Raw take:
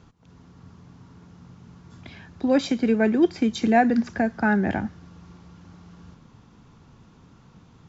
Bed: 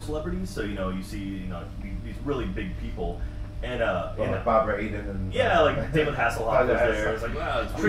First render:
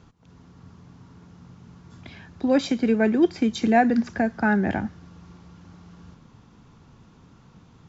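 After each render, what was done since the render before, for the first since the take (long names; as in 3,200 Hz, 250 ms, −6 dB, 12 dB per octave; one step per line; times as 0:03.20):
no processing that can be heard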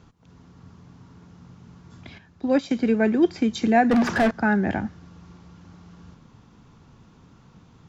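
0:02.18–0:02.71: expander for the loud parts, over −32 dBFS
0:03.91–0:04.31: mid-hump overdrive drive 33 dB, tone 1,300 Hz, clips at −11.5 dBFS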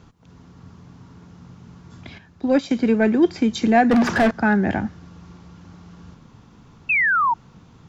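in parallel at −6 dB: soft clipping −16 dBFS, distortion −15 dB
0:06.89–0:07.34: on the sum: sound drawn into the spectrogram fall 890–2,700 Hz −18 dBFS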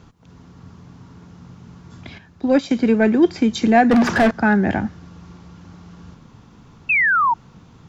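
level +2 dB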